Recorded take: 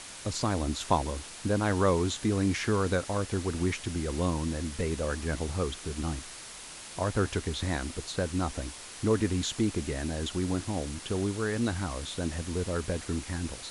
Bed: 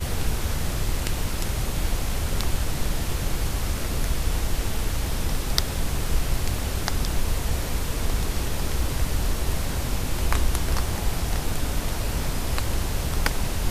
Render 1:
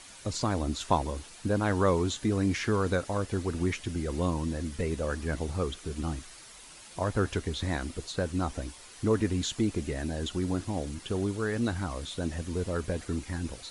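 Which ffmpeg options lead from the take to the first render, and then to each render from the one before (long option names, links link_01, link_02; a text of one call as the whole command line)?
ffmpeg -i in.wav -af "afftdn=noise_reduction=8:noise_floor=-45" out.wav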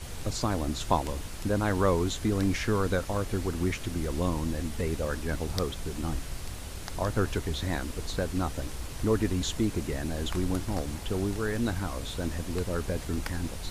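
ffmpeg -i in.wav -i bed.wav -filter_complex "[1:a]volume=-13dB[link_01];[0:a][link_01]amix=inputs=2:normalize=0" out.wav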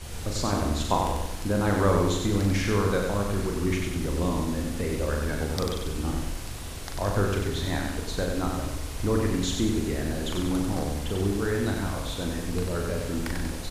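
ffmpeg -i in.wav -filter_complex "[0:a]asplit=2[link_01][link_02];[link_02]adelay=40,volume=-5dB[link_03];[link_01][link_03]amix=inputs=2:normalize=0,aecho=1:1:94|188|282|376|470|564:0.631|0.303|0.145|0.0698|0.0335|0.0161" out.wav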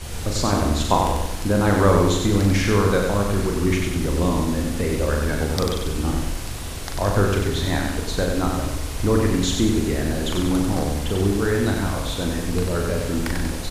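ffmpeg -i in.wav -af "volume=6dB" out.wav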